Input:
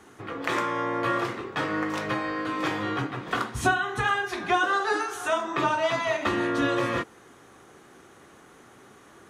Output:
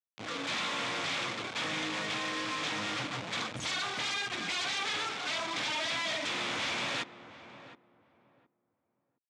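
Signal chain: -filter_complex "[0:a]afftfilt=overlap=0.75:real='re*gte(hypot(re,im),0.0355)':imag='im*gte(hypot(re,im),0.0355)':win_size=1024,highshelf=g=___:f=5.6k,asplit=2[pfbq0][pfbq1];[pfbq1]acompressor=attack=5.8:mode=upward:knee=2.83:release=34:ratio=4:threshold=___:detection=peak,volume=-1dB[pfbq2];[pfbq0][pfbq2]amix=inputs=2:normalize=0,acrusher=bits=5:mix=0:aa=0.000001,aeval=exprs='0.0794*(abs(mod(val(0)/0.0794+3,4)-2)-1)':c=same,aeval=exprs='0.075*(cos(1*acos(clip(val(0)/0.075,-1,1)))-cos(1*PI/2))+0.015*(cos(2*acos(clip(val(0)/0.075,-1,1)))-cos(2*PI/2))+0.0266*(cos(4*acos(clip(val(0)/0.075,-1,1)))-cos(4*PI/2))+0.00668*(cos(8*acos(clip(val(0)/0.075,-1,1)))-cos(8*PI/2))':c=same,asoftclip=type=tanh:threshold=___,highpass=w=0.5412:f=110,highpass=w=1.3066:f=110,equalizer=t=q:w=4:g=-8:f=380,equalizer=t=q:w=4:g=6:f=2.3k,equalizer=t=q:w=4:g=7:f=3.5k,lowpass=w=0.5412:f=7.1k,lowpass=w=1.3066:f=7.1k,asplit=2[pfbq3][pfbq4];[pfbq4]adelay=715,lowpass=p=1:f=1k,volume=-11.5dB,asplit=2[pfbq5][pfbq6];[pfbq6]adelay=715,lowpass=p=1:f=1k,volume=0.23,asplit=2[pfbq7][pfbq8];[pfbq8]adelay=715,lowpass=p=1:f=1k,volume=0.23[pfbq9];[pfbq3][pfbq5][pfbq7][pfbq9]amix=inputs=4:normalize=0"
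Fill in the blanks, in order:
10, -41dB, -32dB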